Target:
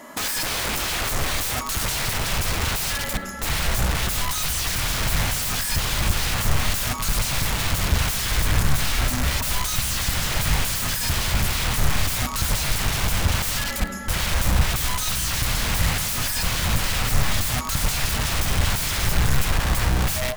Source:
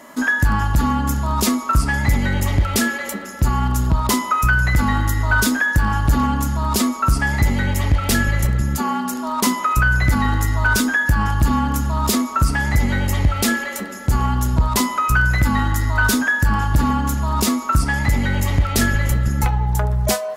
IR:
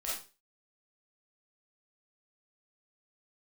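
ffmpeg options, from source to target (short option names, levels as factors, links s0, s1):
-filter_complex "[0:a]aeval=exprs='(mod(11.9*val(0)+1,2)-1)/11.9':c=same,asubboost=boost=9:cutoff=110,asplit=2[s0][s1];[1:a]atrim=start_sample=2205[s2];[s1][s2]afir=irnorm=-1:irlink=0,volume=0.1[s3];[s0][s3]amix=inputs=2:normalize=0"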